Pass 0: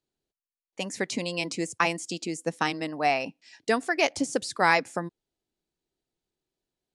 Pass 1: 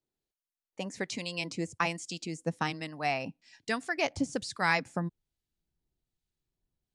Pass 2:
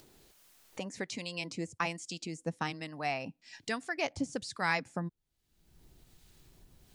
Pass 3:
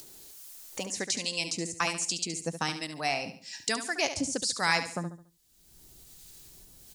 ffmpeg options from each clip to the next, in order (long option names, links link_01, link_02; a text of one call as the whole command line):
ffmpeg -i in.wav -filter_complex "[0:a]asubboost=boost=5.5:cutoff=160,acrossover=split=8700[link_01][link_02];[link_02]acompressor=threshold=-56dB:ratio=4:attack=1:release=60[link_03];[link_01][link_03]amix=inputs=2:normalize=0,acrossover=split=1300[link_04][link_05];[link_04]aeval=exprs='val(0)*(1-0.5/2+0.5/2*cos(2*PI*1.2*n/s))':channel_layout=same[link_06];[link_05]aeval=exprs='val(0)*(1-0.5/2-0.5/2*cos(2*PI*1.2*n/s))':channel_layout=same[link_07];[link_06][link_07]amix=inputs=2:normalize=0,volume=-2.5dB" out.wav
ffmpeg -i in.wav -af "acompressor=mode=upward:threshold=-32dB:ratio=2.5,volume=-3.5dB" out.wav
ffmpeg -i in.wav -filter_complex "[0:a]bass=frequency=250:gain=-3,treble=frequency=4000:gain=13,asplit=2[link_01][link_02];[link_02]aecho=0:1:71|142|213|284:0.316|0.111|0.0387|0.0136[link_03];[link_01][link_03]amix=inputs=2:normalize=0,volume=3dB" out.wav